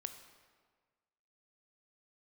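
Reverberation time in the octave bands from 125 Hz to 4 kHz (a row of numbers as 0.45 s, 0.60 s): 1.7 s, 1.5 s, 1.6 s, 1.5 s, 1.4 s, 1.1 s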